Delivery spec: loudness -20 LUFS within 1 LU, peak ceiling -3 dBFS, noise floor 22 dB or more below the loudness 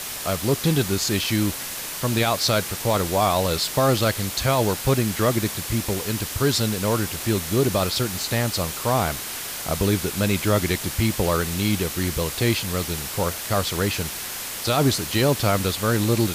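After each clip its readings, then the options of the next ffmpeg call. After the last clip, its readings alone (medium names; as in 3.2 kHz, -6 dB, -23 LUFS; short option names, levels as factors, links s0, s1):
noise floor -32 dBFS; noise floor target -45 dBFS; loudness -22.5 LUFS; peak level -8.5 dBFS; loudness target -20.0 LUFS
-> -af "afftdn=nr=13:nf=-32"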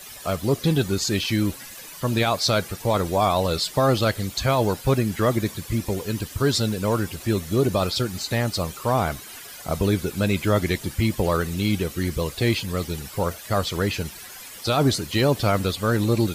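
noise floor -41 dBFS; noise floor target -46 dBFS
-> -af "afftdn=nr=6:nf=-41"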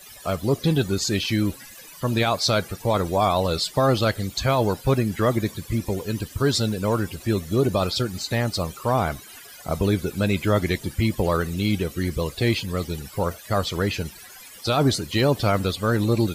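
noise floor -44 dBFS; noise floor target -46 dBFS
-> -af "afftdn=nr=6:nf=-44"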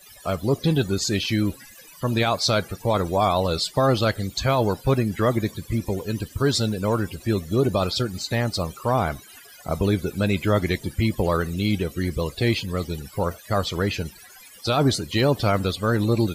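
noise floor -47 dBFS; loudness -23.5 LUFS; peak level -9.5 dBFS; loudness target -20.0 LUFS
-> -af "volume=1.5"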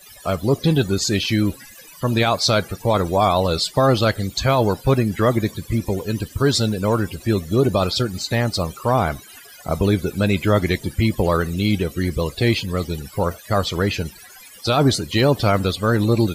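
loudness -20.0 LUFS; peak level -6.0 dBFS; noise floor -43 dBFS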